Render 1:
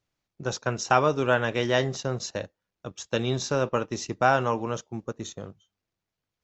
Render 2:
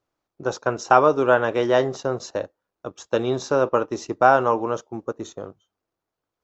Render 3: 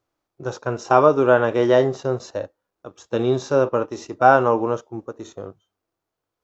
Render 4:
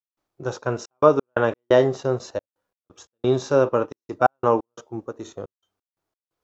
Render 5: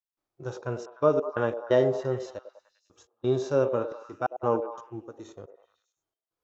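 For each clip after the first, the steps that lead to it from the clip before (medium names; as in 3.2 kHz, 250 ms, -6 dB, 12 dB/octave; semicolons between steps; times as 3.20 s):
high-order bell 630 Hz +9.5 dB 2.7 oct; trim -3 dB
harmonic-percussive split percussive -10 dB; trim +5 dB
trance gate ".xxxx.x.x" 88 bpm -60 dB
harmonic-percussive split percussive -7 dB; repeats whose band climbs or falls 100 ms, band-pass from 510 Hz, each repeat 0.7 oct, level -7 dB; trim -4.5 dB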